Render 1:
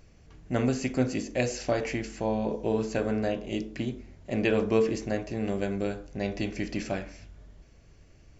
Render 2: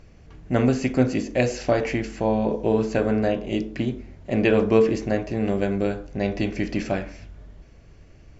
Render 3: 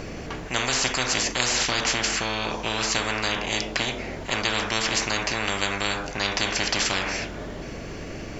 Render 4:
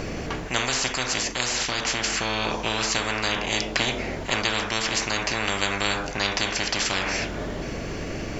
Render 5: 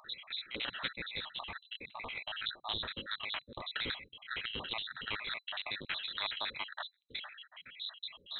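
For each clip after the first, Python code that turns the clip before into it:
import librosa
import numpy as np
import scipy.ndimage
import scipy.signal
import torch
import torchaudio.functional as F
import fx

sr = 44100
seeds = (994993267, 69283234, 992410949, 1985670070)

y1 = fx.lowpass(x, sr, hz=3400.0, slope=6)
y1 = y1 * librosa.db_to_amplitude(6.5)
y2 = fx.spectral_comp(y1, sr, ratio=10.0)
y3 = fx.rider(y2, sr, range_db=4, speed_s=0.5)
y4 = fx.spec_dropout(y3, sr, seeds[0], share_pct=74)
y4 = fx.cheby_harmonics(y4, sr, harmonics=(6, 8), levels_db=(-14, -23), full_scale_db=-13.0)
y4 = fx.freq_invert(y4, sr, carrier_hz=4000)
y4 = y4 * librosa.db_to_amplitude(-8.5)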